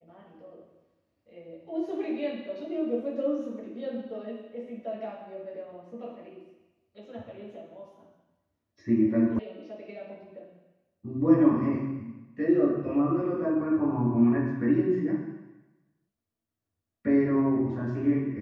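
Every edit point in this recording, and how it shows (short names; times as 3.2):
9.39 sound cut off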